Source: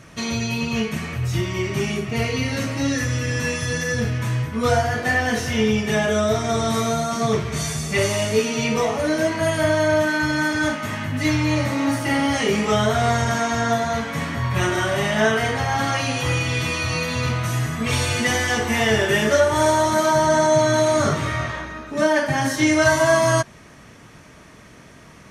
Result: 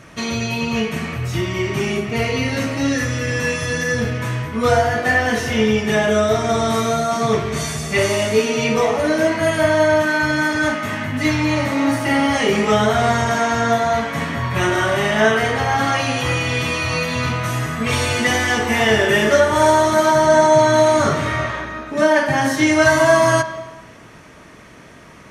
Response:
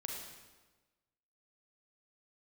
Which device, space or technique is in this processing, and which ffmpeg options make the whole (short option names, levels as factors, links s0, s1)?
filtered reverb send: -filter_complex "[0:a]asplit=2[s0][s1];[s1]highpass=190,lowpass=3900[s2];[1:a]atrim=start_sample=2205[s3];[s2][s3]afir=irnorm=-1:irlink=0,volume=0.596[s4];[s0][s4]amix=inputs=2:normalize=0,volume=1.12"